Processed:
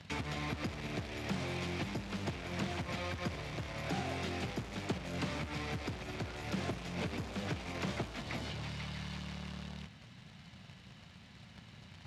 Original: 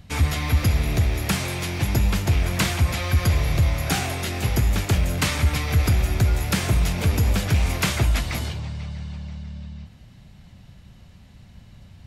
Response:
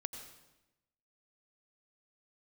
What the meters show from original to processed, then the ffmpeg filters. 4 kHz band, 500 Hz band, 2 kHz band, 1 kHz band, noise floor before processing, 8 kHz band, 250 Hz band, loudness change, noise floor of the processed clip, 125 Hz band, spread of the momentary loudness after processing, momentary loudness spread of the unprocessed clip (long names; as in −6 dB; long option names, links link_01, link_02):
−14.0 dB, −10.0 dB, −13.0 dB, −11.5 dB, −48 dBFS, −21.0 dB, −11.5 dB, −17.0 dB, −56 dBFS, −19.5 dB, 16 LU, 12 LU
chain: -filter_complex "[0:a]equalizer=frequency=400:width_type=o:width=2.4:gain=-9,acrossover=split=700[link_01][link_02];[link_02]acompressor=threshold=-43dB:ratio=6[link_03];[link_01][link_03]amix=inputs=2:normalize=0,alimiter=limit=-22dB:level=0:latency=1:release=54,acrossover=split=220[link_04][link_05];[link_04]acompressor=threshold=-34dB:ratio=4[link_06];[link_06][link_05]amix=inputs=2:normalize=0,acrusher=bits=3:mode=log:mix=0:aa=0.000001,highpass=170,lowpass=4500,volume=2dB"